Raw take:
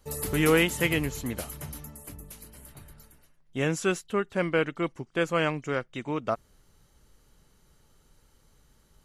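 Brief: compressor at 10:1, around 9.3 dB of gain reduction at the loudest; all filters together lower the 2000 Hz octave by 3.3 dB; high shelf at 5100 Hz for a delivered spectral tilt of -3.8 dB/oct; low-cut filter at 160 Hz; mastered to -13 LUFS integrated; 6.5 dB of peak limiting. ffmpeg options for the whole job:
-af "highpass=160,equalizer=f=2k:t=o:g=-5,highshelf=f=5.1k:g=4.5,acompressor=threshold=-27dB:ratio=10,volume=23dB,alimiter=limit=0dB:level=0:latency=1"

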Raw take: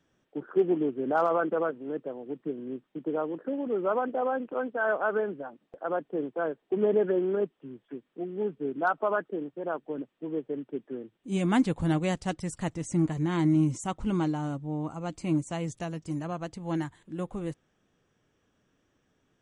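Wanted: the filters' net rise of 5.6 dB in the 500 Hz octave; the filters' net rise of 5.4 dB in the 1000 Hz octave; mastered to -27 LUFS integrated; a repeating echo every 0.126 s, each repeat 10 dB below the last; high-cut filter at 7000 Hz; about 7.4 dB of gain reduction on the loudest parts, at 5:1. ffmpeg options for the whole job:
-af "lowpass=7k,equalizer=f=500:t=o:g=6,equalizer=f=1k:t=o:g=5,acompressor=threshold=-23dB:ratio=5,aecho=1:1:126|252|378|504:0.316|0.101|0.0324|0.0104,volume=2.5dB"

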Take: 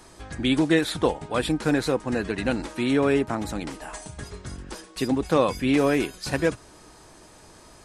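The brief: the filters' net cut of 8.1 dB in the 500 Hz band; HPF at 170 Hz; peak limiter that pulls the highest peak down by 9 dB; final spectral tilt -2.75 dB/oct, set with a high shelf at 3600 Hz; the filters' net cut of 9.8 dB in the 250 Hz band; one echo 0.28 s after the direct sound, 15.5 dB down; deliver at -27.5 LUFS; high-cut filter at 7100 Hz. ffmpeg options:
-af "highpass=170,lowpass=7.1k,equalizer=f=250:t=o:g=-9,equalizer=f=500:t=o:g=-7,highshelf=f=3.6k:g=8.5,alimiter=limit=-19.5dB:level=0:latency=1,aecho=1:1:280:0.168,volume=5dB"

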